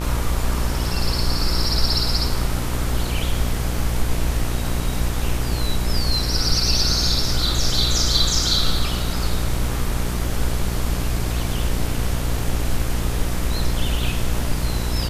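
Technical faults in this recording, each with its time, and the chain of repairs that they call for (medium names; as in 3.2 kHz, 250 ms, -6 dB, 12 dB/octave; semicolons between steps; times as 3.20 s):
buzz 60 Hz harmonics 40 -25 dBFS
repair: de-hum 60 Hz, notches 40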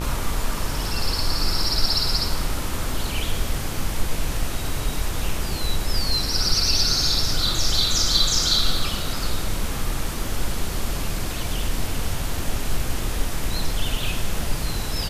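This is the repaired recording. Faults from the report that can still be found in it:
nothing left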